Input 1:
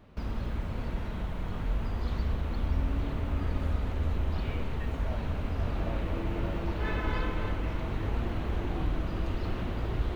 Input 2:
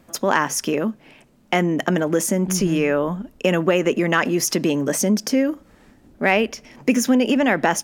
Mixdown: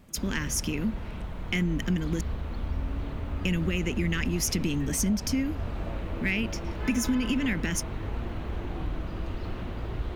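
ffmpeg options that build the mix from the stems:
ffmpeg -i stem1.wav -i stem2.wav -filter_complex "[0:a]volume=-2dB[link_01];[1:a]firequalizer=gain_entry='entry(170,0);entry(670,-28);entry(2100,-4)':delay=0.05:min_phase=1,volume=-1dB,asplit=3[link_02][link_03][link_04];[link_02]atrim=end=2.21,asetpts=PTS-STARTPTS,afade=type=out:start_time=2.206:duration=0.004:curve=hsin[link_05];[link_03]atrim=start=2.21:end=3.45,asetpts=PTS-STARTPTS,volume=0[link_06];[link_04]atrim=start=3.45,asetpts=PTS-STARTPTS,afade=type=in:duration=0.004:curve=hsin[link_07];[link_05][link_06][link_07]concat=n=3:v=0:a=1[link_08];[link_01][link_08]amix=inputs=2:normalize=0,acompressor=threshold=-22dB:ratio=6" out.wav

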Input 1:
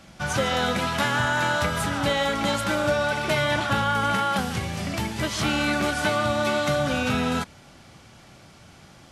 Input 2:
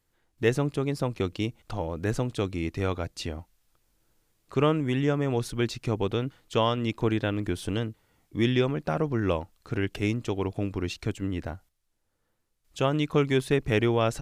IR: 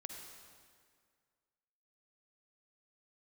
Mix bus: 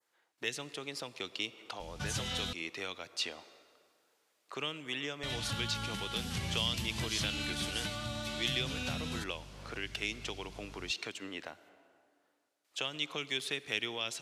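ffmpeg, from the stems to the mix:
-filter_complex "[0:a]acompressor=threshold=-28dB:ratio=2.5,aeval=exprs='val(0)+0.00562*(sin(2*PI*50*n/s)+sin(2*PI*2*50*n/s)/2+sin(2*PI*3*50*n/s)/3+sin(2*PI*4*50*n/s)/4+sin(2*PI*5*50*n/s)/5)':channel_layout=same,adelay=1800,volume=-4.5dB,asplit=3[link_01][link_02][link_03];[link_01]atrim=end=2.53,asetpts=PTS-STARTPTS,afade=type=out:start_time=2.526:duration=0.004:curve=hsin[link_04];[link_02]atrim=start=2.53:end=5.23,asetpts=PTS-STARTPTS,volume=0[link_05];[link_03]atrim=start=5.23,asetpts=PTS-STARTPTS,afade=type=in:duration=0.004:curve=hsin[link_06];[link_04][link_05][link_06]concat=n=3:v=0:a=1[link_07];[1:a]highpass=580,highshelf=frequency=9900:gain=-10.5,volume=0dB,asplit=2[link_08][link_09];[link_09]volume=-9dB[link_10];[2:a]atrim=start_sample=2205[link_11];[link_10][link_11]afir=irnorm=-1:irlink=0[link_12];[link_07][link_08][link_12]amix=inputs=3:normalize=0,acrossover=split=210|3000[link_13][link_14][link_15];[link_14]acompressor=threshold=-42dB:ratio=10[link_16];[link_13][link_16][link_15]amix=inputs=3:normalize=0,adynamicequalizer=threshold=0.00355:dfrequency=3100:dqfactor=0.85:tfrequency=3100:tqfactor=0.85:attack=5:release=100:ratio=0.375:range=2.5:mode=boostabove:tftype=bell"

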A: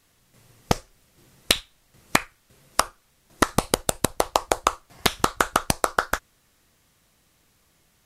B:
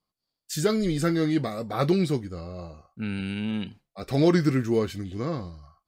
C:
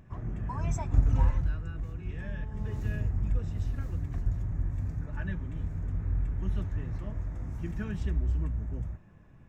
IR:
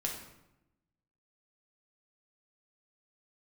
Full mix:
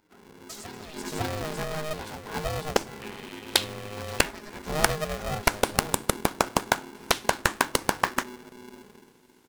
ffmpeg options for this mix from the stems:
-filter_complex "[0:a]adelay=2050,volume=-3.5dB,asplit=2[link_01][link_02];[link_02]volume=-19.5dB[link_03];[1:a]volume=1dB,asplit=2[link_04][link_05];[link_05]volume=-9.5dB[link_06];[2:a]volume=-10dB,asplit=3[link_07][link_08][link_09];[link_08]volume=-7.5dB[link_10];[link_09]volume=-21dB[link_11];[link_04][link_07]amix=inputs=2:normalize=0,highpass=650,acompressor=threshold=-40dB:ratio=12,volume=0dB[link_12];[3:a]atrim=start_sample=2205[link_13];[link_03][link_10]amix=inputs=2:normalize=0[link_14];[link_14][link_13]afir=irnorm=-1:irlink=0[link_15];[link_06][link_11]amix=inputs=2:normalize=0,aecho=0:1:553:1[link_16];[link_01][link_12][link_15][link_16]amix=inputs=4:normalize=0,aeval=exprs='val(0)*sgn(sin(2*PI*310*n/s))':channel_layout=same"

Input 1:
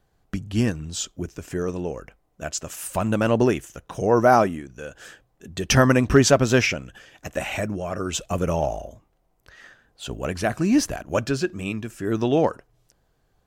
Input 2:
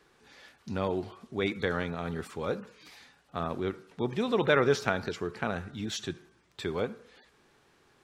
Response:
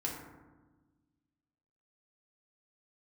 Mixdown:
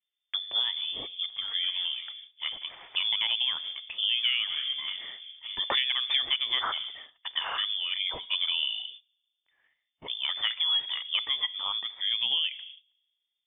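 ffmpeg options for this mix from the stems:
-filter_complex "[0:a]adynamicequalizer=threshold=0.0224:dfrequency=270:dqfactor=2.5:tfrequency=270:tqfactor=2.5:attack=5:release=100:ratio=0.375:range=2:mode=cutabove:tftype=bell,volume=-3.5dB,asplit=3[link_01][link_02][link_03];[link_02]volume=-18.5dB[link_04];[1:a]tiltshelf=frequency=690:gain=6,volume=-14.5dB,asplit=2[link_05][link_06];[link_06]volume=-4dB[link_07];[link_03]apad=whole_len=354237[link_08];[link_05][link_08]sidechaingate=range=-33dB:threshold=-45dB:ratio=16:detection=peak[link_09];[2:a]atrim=start_sample=2205[link_10];[link_04][link_07]amix=inputs=2:normalize=0[link_11];[link_11][link_10]afir=irnorm=-1:irlink=0[link_12];[link_01][link_09][link_12]amix=inputs=3:normalize=0,agate=range=-20dB:threshold=-45dB:ratio=16:detection=peak,lowpass=frequency=3100:width_type=q:width=0.5098,lowpass=frequency=3100:width_type=q:width=0.6013,lowpass=frequency=3100:width_type=q:width=0.9,lowpass=frequency=3100:width_type=q:width=2.563,afreqshift=-3600,acompressor=threshold=-24dB:ratio=6"

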